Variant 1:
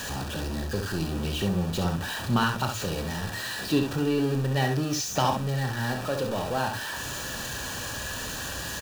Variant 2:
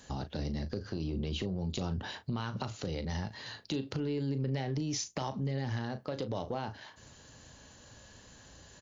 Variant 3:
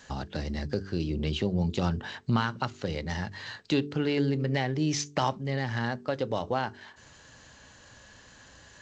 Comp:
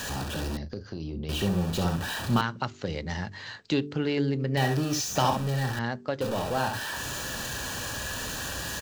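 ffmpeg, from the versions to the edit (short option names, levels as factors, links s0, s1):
-filter_complex "[2:a]asplit=2[s0][s1];[0:a]asplit=4[s2][s3][s4][s5];[s2]atrim=end=0.572[s6];[1:a]atrim=start=0.568:end=1.292[s7];[s3]atrim=start=1.288:end=2.412[s8];[s0]atrim=start=2.408:end=4.572[s9];[s4]atrim=start=4.568:end=5.792[s10];[s1]atrim=start=5.788:end=6.212[s11];[s5]atrim=start=6.208[s12];[s6][s7]acrossfade=d=0.004:c1=hsin:c2=hsin[s13];[s13][s8]acrossfade=d=0.004:c1=hsin:c2=hsin[s14];[s14][s9]acrossfade=d=0.004:c1=hsin:c2=hsin[s15];[s15][s10]acrossfade=d=0.004:c1=hsin:c2=hsin[s16];[s16][s11]acrossfade=d=0.004:c1=hsin:c2=hsin[s17];[s17][s12]acrossfade=d=0.004:c1=hsin:c2=hsin"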